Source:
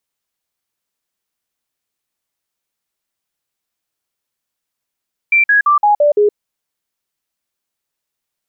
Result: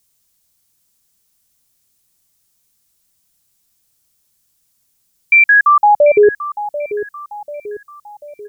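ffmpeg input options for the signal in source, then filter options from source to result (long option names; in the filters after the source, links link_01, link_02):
-f lavfi -i "aevalsrc='0.422*clip(min(mod(t,0.17),0.12-mod(t,0.17))/0.005,0,1)*sin(2*PI*2350*pow(2,-floor(t/0.17)/2)*mod(t,0.17))':duration=1.02:sample_rate=44100"
-filter_complex "[0:a]bass=frequency=250:gain=13,treble=frequency=4000:gain=13,asplit=2[link_01][link_02];[link_02]alimiter=limit=-17dB:level=0:latency=1,volume=-2dB[link_03];[link_01][link_03]amix=inputs=2:normalize=0,asplit=2[link_04][link_05];[link_05]adelay=740,lowpass=frequency=1600:poles=1,volume=-12dB,asplit=2[link_06][link_07];[link_07]adelay=740,lowpass=frequency=1600:poles=1,volume=0.52,asplit=2[link_08][link_09];[link_09]adelay=740,lowpass=frequency=1600:poles=1,volume=0.52,asplit=2[link_10][link_11];[link_11]adelay=740,lowpass=frequency=1600:poles=1,volume=0.52,asplit=2[link_12][link_13];[link_13]adelay=740,lowpass=frequency=1600:poles=1,volume=0.52[link_14];[link_04][link_06][link_08][link_10][link_12][link_14]amix=inputs=6:normalize=0"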